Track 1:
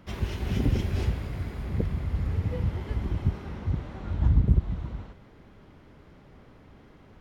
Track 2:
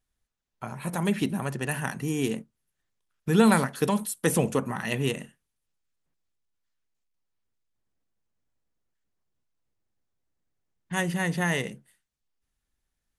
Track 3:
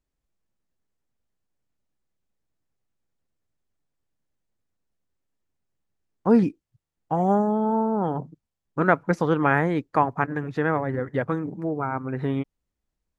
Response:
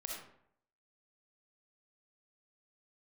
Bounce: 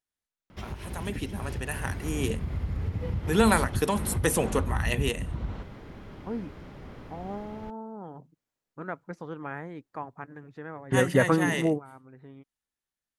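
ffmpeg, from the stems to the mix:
-filter_complex "[0:a]acompressor=threshold=-35dB:ratio=6,adelay=500,volume=0dB[a];[1:a]highpass=f=300:p=1,volume=-7dB,asplit=2[b][c];[2:a]volume=-2.5dB[d];[c]apad=whole_len=581475[e];[d][e]sidechaingate=range=-22dB:threshold=-50dB:ratio=16:detection=peak[f];[a][b][f]amix=inputs=3:normalize=0,dynaudnorm=f=290:g=13:m=8dB"

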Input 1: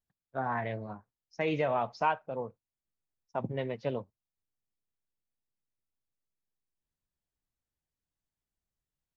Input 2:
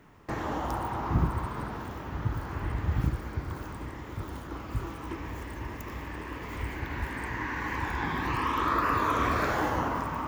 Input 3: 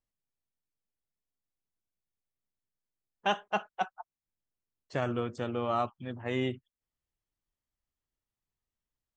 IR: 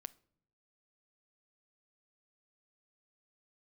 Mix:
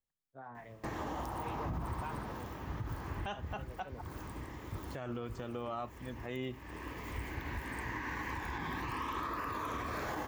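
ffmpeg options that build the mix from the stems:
-filter_complex "[0:a]acrossover=split=560[a][b];[a]aeval=exprs='val(0)*(1-0.7/2+0.7/2*cos(2*PI*5.6*n/s))':c=same[c];[b]aeval=exprs='val(0)*(1-0.7/2-0.7/2*cos(2*PI*5.6*n/s))':c=same[d];[c][d]amix=inputs=2:normalize=0,volume=-13dB[e];[1:a]highshelf=f=5.9k:g=5.5,bandreject=f=1.4k:w=12,adelay=550,volume=-5.5dB[f];[2:a]volume=-5dB,asplit=2[g][h];[h]apad=whole_len=477523[i];[f][i]sidechaincompress=threshold=-46dB:ratio=3:attack=10:release=287[j];[e][j][g]amix=inputs=3:normalize=0,alimiter=level_in=5.5dB:limit=-24dB:level=0:latency=1:release=88,volume=-5.5dB"

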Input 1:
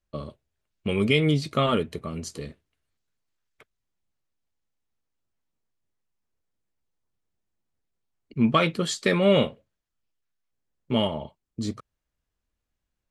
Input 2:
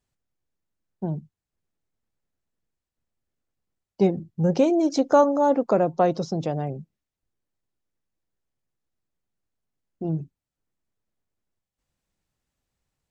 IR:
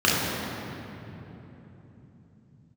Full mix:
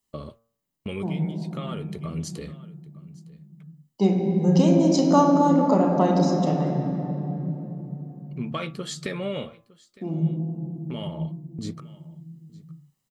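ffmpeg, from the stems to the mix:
-filter_complex "[0:a]agate=range=-12dB:threshold=-47dB:ratio=16:detection=peak,acompressor=threshold=-31dB:ratio=3,volume=0.5dB,asplit=2[a][b];[b]volume=-22.5dB[c];[1:a]highpass=f=130:w=0.5412,highpass=f=130:w=1.3066,aemphasis=mode=production:type=50kf,aecho=1:1:1:0.32,volume=-4dB,asplit=3[d][e][f];[e]volume=-18dB[g];[f]apad=whole_len=577839[h];[a][h]sidechaincompress=threshold=-37dB:ratio=8:attack=16:release=1300[i];[2:a]atrim=start_sample=2205[j];[g][j]afir=irnorm=-1:irlink=0[k];[c]aecho=0:1:910:1[l];[i][d][k][l]amix=inputs=4:normalize=0,bandreject=f=114.4:t=h:w=4,bandreject=f=228.8:t=h:w=4,bandreject=f=343.2:t=h:w=4,bandreject=f=457.6:t=h:w=4,bandreject=f=572:t=h:w=4,bandreject=f=686.4:t=h:w=4,bandreject=f=800.8:t=h:w=4,bandreject=f=915.2:t=h:w=4,bandreject=f=1.0296k:t=h:w=4,bandreject=f=1.144k:t=h:w=4,bandreject=f=1.2584k:t=h:w=4,bandreject=f=1.3728k:t=h:w=4,bandreject=f=1.4872k:t=h:w=4,bandreject=f=1.6016k:t=h:w=4,bandreject=f=1.716k:t=h:w=4"

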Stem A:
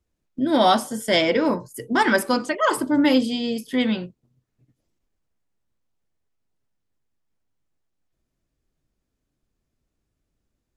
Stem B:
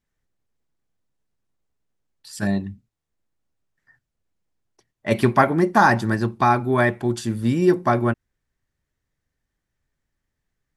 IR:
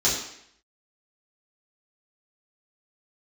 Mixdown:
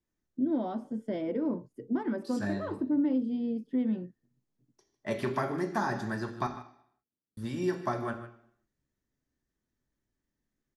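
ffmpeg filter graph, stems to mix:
-filter_complex "[0:a]acompressor=threshold=-18dB:ratio=6,bandpass=f=260:t=q:w=1.3:csg=0,volume=-4.5dB[a];[1:a]acrossover=split=540|1300|3900[b][c][d][e];[b]acompressor=threshold=-25dB:ratio=4[f];[c]acompressor=threshold=-27dB:ratio=4[g];[d]acompressor=threshold=-31dB:ratio=4[h];[e]acompressor=threshold=-46dB:ratio=4[i];[f][g][h][i]amix=inputs=4:normalize=0,volume=-10dB,asplit=3[j][k][l];[j]atrim=end=6.47,asetpts=PTS-STARTPTS,afade=t=out:st=6.466:d=0.004:c=hsin[m];[k]atrim=start=6.47:end=7.37,asetpts=PTS-STARTPTS,volume=0[n];[l]atrim=start=7.37,asetpts=PTS-STARTPTS,afade=t=in:d=0.004:c=hsin[o];[m][n][o]concat=n=3:v=0:a=1,asplit=3[p][q][r];[q]volume=-17dB[s];[r]volume=-14dB[t];[2:a]atrim=start_sample=2205[u];[s][u]afir=irnorm=-1:irlink=0[v];[t]aecho=0:1:152:1[w];[a][p][v][w]amix=inputs=4:normalize=0"

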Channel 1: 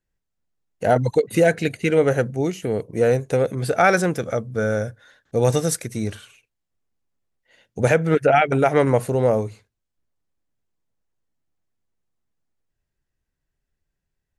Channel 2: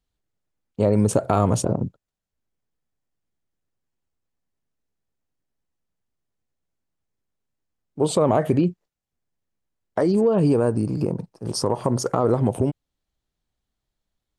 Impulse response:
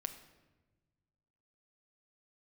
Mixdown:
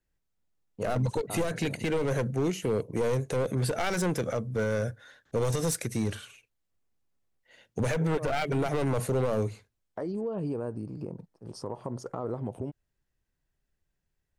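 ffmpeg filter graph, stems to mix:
-filter_complex "[0:a]aeval=exprs='clip(val(0),-1,0.112)':c=same,acrossover=split=250|3000[a][b][c];[b]acompressor=threshold=-21dB:ratio=6[d];[a][d][c]amix=inputs=3:normalize=0,volume=-1dB,asplit=2[e][f];[1:a]highshelf=f=4k:g=-7.5,volume=-14dB[g];[f]apad=whole_len=634305[h];[g][h]sidechaincompress=threshold=-25dB:ratio=8:attack=6.3:release=462[i];[e][i]amix=inputs=2:normalize=0,alimiter=limit=-20dB:level=0:latency=1:release=57"

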